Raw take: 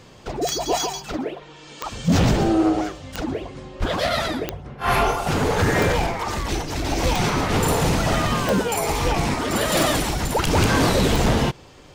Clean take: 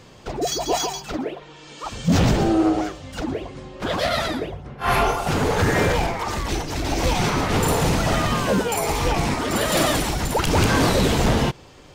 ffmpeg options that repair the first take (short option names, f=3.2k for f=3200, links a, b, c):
-filter_complex "[0:a]adeclick=t=4,asplit=3[a][b][c];[a]afade=t=out:st=3.79:d=0.02[d];[b]highpass=f=140:w=0.5412,highpass=f=140:w=1.3066,afade=t=in:st=3.79:d=0.02,afade=t=out:st=3.91:d=0.02[e];[c]afade=t=in:st=3.91:d=0.02[f];[d][e][f]amix=inputs=3:normalize=0,asplit=3[g][h][i];[g]afade=t=out:st=11.11:d=0.02[j];[h]highpass=f=140:w=0.5412,highpass=f=140:w=1.3066,afade=t=in:st=11.11:d=0.02,afade=t=out:st=11.23:d=0.02[k];[i]afade=t=in:st=11.23:d=0.02[l];[j][k][l]amix=inputs=3:normalize=0"